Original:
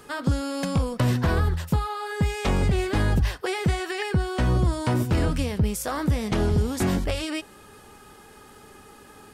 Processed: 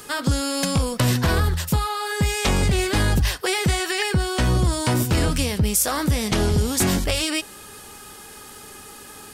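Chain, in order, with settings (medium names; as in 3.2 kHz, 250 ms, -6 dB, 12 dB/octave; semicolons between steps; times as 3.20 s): treble shelf 2.8 kHz +12 dB; in parallel at -7 dB: saturation -22.5 dBFS, distortion -11 dB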